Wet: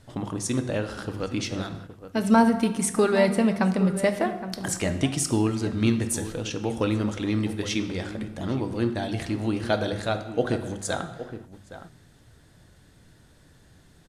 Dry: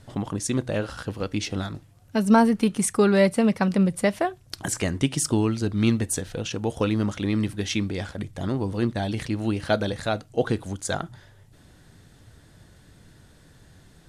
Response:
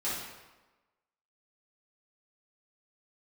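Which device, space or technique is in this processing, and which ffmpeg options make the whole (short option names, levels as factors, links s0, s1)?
keyed gated reverb: -filter_complex "[0:a]bandreject=f=50:t=h:w=6,bandreject=f=100:t=h:w=6,bandreject=f=150:t=h:w=6,bandreject=f=200:t=h:w=6,asplit=2[s0][s1];[s1]adelay=816.3,volume=0.251,highshelf=f=4000:g=-18.4[s2];[s0][s2]amix=inputs=2:normalize=0,asplit=3[s3][s4][s5];[1:a]atrim=start_sample=2205[s6];[s4][s6]afir=irnorm=-1:irlink=0[s7];[s5]apad=whole_len=656983[s8];[s7][s8]sidechaingate=range=0.0224:threshold=0.00708:ratio=16:detection=peak,volume=0.237[s9];[s3][s9]amix=inputs=2:normalize=0,volume=0.75"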